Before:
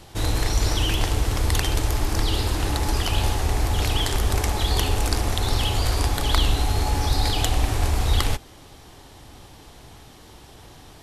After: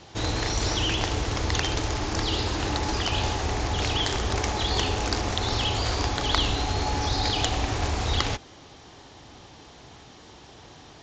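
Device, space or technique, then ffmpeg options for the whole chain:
Bluetooth headset: -af "highpass=f=120:p=1,aresample=16000,aresample=44100" -ar 16000 -c:a sbc -b:a 64k

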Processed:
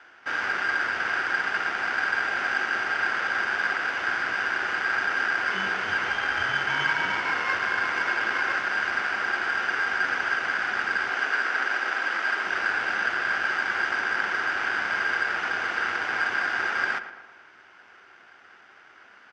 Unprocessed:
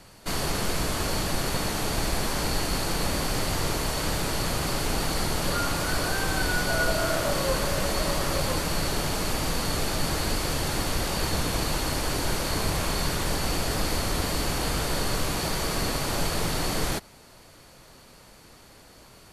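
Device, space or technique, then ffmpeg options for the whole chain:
ring modulator pedal into a guitar cabinet: -filter_complex "[0:a]aeval=exprs='val(0)*sgn(sin(2*PI*1600*n/s))':c=same,highpass=100,equalizer=f=150:t=q:w=4:g=-10,equalizer=f=370:t=q:w=4:g=6,equalizer=f=770:t=q:w=4:g=7,equalizer=f=1400:t=q:w=4:g=10,equalizer=f=2100:t=q:w=4:g=3,equalizer=f=4100:t=q:w=4:g=-9,lowpass=f=4500:w=0.5412,lowpass=f=4500:w=1.3066,asettb=1/sr,asplit=3[s0][s1][s2];[s0]atrim=end=11.144[s3];[s1]atrim=start=11.14:end=12.45,asetpts=PTS-STARTPTS,afade=t=in:d=0.004:c=qsin,afade=t=out:st=1.306:d=0.004:c=qsin,highpass=f=220:w=0.5412,highpass=f=220:w=1.3066[s4];[s2]atrim=start=12.446[s5];[s3][s4]acrossfade=d=0.004:c1=hsin:c2=qsin[s6];[s6][s5]acrossfade=d=0.004:c1=qsin:c2=hsin,asplit=2[s7][s8];[s8]adelay=114,lowpass=f=2800:p=1,volume=0.266,asplit=2[s9][s10];[s10]adelay=114,lowpass=f=2800:p=1,volume=0.54,asplit=2[s11][s12];[s12]adelay=114,lowpass=f=2800:p=1,volume=0.54,asplit=2[s13][s14];[s14]adelay=114,lowpass=f=2800:p=1,volume=0.54,asplit=2[s15][s16];[s16]adelay=114,lowpass=f=2800:p=1,volume=0.54,asplit=2[s17][s18];[s18]adelay=114,lowpass=f=2800:p=1,volume=0.54[s19];[s7][s9][s11][s13][s15][s17][s19]amix=inputs=7:normalize=0,volume=0.596"

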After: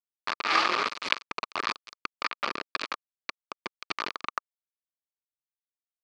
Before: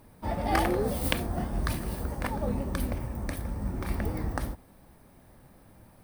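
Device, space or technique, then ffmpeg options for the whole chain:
hand-held game console: -af "acrusher=bits=3:mix=0:aa=0.000001,highpass=480,equalizer=f=520:t=q:w=4:g=-5,equalizer=f=760:t=q:w=4:g=-8,equalizer=f=1200:t=q:w=4:g=10,equalizer=f=2400:t=q:w=4:g=7,equalizer=f=4500:t=q:w=4:g=7,lowpass=f=5100:w=0.5412,lowpass=f=5100:w=1.3066"

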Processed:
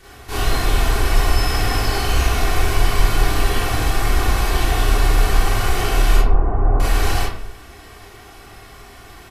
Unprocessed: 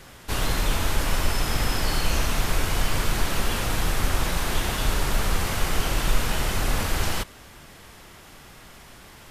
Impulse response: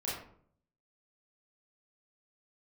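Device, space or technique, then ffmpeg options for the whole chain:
microphone above a desk: -filter_complex "[0:a]asettb=1/sr,asplit=3[s0][s1][s2];[s0]atrim=end=6.174[s3];[s1]atrim=start=6.17:end=6.8,asetpts=PTS-STARTPTS,afade=t=in:d=0.004:c=qsin,afade=t=out:st=0.626:d=0.004:c=qsin,lowpass=f=1100:w=0.5412,lowpass=f=1100:w=1.3066[s4];[s2]atrim=start=6.796[s5];[s3][s4]acrossfade=d=0.004:c1=hsin:c2=qsin[s6];[s6][s5]acrossfade=d=0.004:c1=qsin:c2=hsin,aecho=1:1:2.7:0.52[s7];[1:a]atrim=start_sample=2205[s8];[s7][s8]afir=irnorm=-1:irlink=0,volume=1.12"

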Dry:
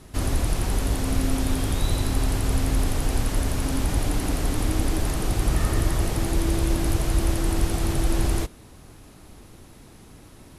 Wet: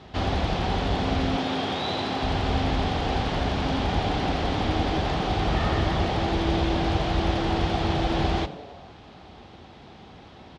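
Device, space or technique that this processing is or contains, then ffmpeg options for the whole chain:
frequency-shifting delay pedal into a guitar cabinet: -filter_complex "[0:a]asettb=1/sr,asplit=3[s0][s1][s2];[s0]atrim=end=1.364[s3];[s1]atrim=start=1.36:end=2.23,asetpts=PTS-STARTPTS,afade=t=in:d=0.004:c=qsin,afade=t=out:st=0.866:d=0.004:c=qsin,highpass=180[s4];[s2]atrim=start=2.226[s5];[s3][s4]acrossfade=d=0.004:c1=hsin:c2=qsin[s6];[s6][s5]acrossfade=d=0.004:c1=qsin:c2=hsin,asplit=6[s7][s8][s9][s10][s11][s12];[s8]adelay=91,afreqshift=130,volume=0.112[s13];[s9]adelay=182,afreqshift=260,volume=0.0638[s14];[s10]adelay=273,afreqshift=390,volume=0.0363[s15];[s11]adelay=364,afreqshift=520,volume=0.0209[s16];[s12]adelay=455,afreqshift=650,volume=0.0119[s17];[s7][s13][s14][s15][s16][s17]amix=inputs=6:normalize=0,highpass=76,equalizer=f=120:t=q:w=4:g=-7,equalizer=f=290:t=q:w=4:g=-5,equalizer=f=770:t=q:w=4:g=8,equalizer=f=3300:t=q:w=4:g=5,lowpass=f=4500:w=0.5412,lowpass=f=4500:w=1.3066,volume=1.41"

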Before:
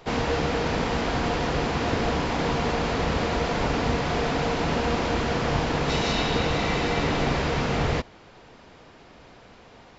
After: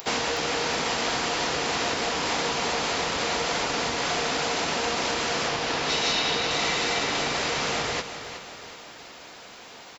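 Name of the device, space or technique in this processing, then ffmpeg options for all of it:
upward and downward compression: -filter_complex "[0:a]acompressor=mode=upward:threshold=0.00501:ratio=2.5,acompressor=threshold=0.0501:ratio=6,aemphasis=mode=production:type=riaa,asettb=1/sr,asplit=3[s0][s1][s2];[s0]atrim=end=5.484[s3];[s1]atrim=start=5.48:end=6.51,asetpts=PTS-STARTPTS,afade=t=in:d=0.004:c=qsin,afade=t=out:st=1.026:d=0.004:c=qsin,lowpass=6200[s4];[s2]atrim=start=6.506[s5];[s3][s4]acrossfade=d=0.004:c1=hsin:c2=qsin[s6];[s6][s5]acrossfade=d=0.004:c1=qsin:c2=hsin,aecho=1:1:368|736|1104|1472|1840:0.282|0.138|0.0677|0.0332|0.0162,volume=1.58"

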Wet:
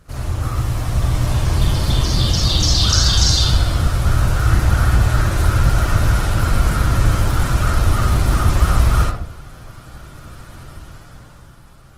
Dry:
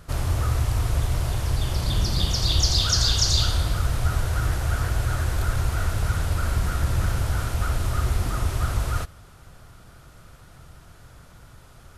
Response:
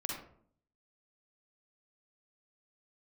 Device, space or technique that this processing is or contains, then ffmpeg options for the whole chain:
speakerphone in a meeting room: -filter_complex "[1:a]atrim=start_sample=2205[s0];[0:a][s0]afir=irnorm=-1:irlink=0,dynaudnorm=f=130:g=17:m=3.16" -ar 48000 -c:a libopus -b:a 16k

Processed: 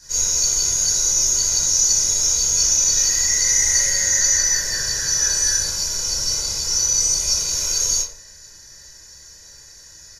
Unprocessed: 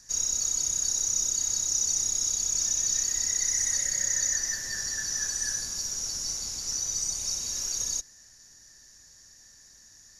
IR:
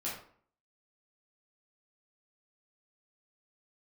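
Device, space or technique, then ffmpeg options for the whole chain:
microphone above a desk: -filter_complex "[0:a]aecho=1:1:2:0.7[s0];[1:a]atrim=start_sample=2205[s1];[s0][s1]afir=irnorm=-1:irlink=0,volume=2.66"

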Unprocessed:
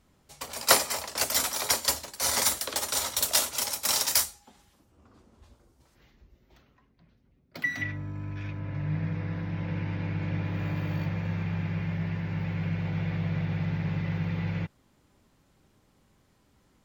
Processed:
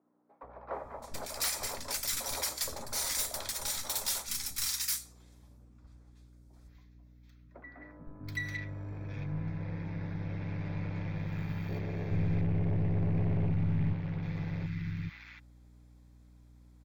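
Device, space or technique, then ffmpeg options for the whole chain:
valve amplifier with mains hum: -filter_complex "[0:a]bandreject=f=2900:w=5.8,asettb=1/sr,asplit=3[s0][s1][s2];[s0]atrim=end=11.684[s3];[s1]atrim=start=11.68:end=13.5,asetpts=PTS-STARTPTS,afade=t=in:d=0.004:c=qsin,afade=t=out:st=1.816:d=0.004:c=qsin,bass=f=250:g=13,treble=f=4000:g=-6[s4];[s2]atrim=start=13.496[s5];[s3][s4]acrossfade=d=0.004:c1=hsin:c2=qsin[s6];[s6][s5]acrossfade=d=0.004:c1=qsin:c2=hsin,aeval=exprs='(tanh(15.8*val(0)+0.5)-tanh(0.5))/15.8':c=same,aeval=exprs='val(0)+0.00224*(sin(2*PI*60*n/s)+sin(2*PI*2*60*n/s)/2+sin(2*PI*3*60*n/s)/3+sin(2*PI*4*60*n/s)/4+sin(2*PI*5*60*n/s)/5)':c=same,acrossover=split=280|1300[s7][s8][s9];[s7]adelay=430[s10];[s9]adelay=730[s11];[s10][s8][s11]amix=inputs=3:normalize=0,volume=0.75"

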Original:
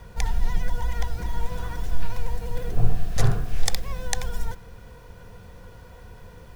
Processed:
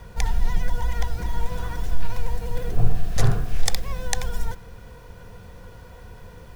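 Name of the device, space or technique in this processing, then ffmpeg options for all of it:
parallel distortion: -filter_complex "[0:a]asplit=2[s0][s1];[s1]asoftclip=type=hard:threshold=0.2,volume=0.237[s2];[s0][s2]amix=inputs=2:normalize=0"

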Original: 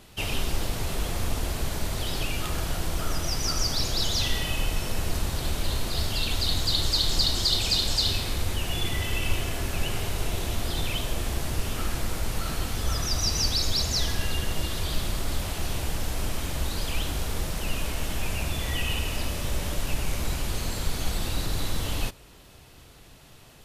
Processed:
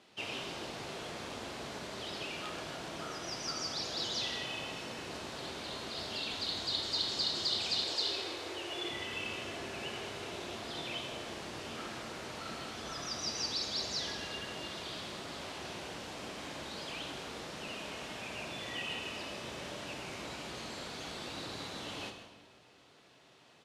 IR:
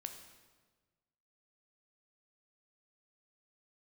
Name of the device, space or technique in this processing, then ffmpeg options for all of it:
supermarket ceiling speaker: -filter_complex "[0:a]asettb=1/sr,asplit=3[s0][s1][s2];[s0]atrim=end=7.844[s3];[s1]atrim=start=7.84:end=8.9,asetpts=PTS-STARTPTS,afade=t=in:d=0.004:c=qsin,afade=t=out:st=1.056:d=0.004:c=qsin,lowshelf=f=270:t=q:w=3:g=-7.5[s4];[s2]atrim=start=8.896[s5];[s3][s4]acrossfade=d=0.004:c1=hsin:c2=qsin[s6];[s6][s5]acrossfade=d=0.004:c1=qsin:c2=hsin,highpass=240,lowpass=5400,asplit=2[s7][s8];[s8]adelay=157.4,volume=0.224,highshelf=f=4000:g=-3.54[s9];[s7][s9]amix=inputs=2:normalize=0[s10];[1:a]atrim=start_sample=2205[s11];[s10][s11]afir=irnorm=-1:irlink=0,volume=0.668"

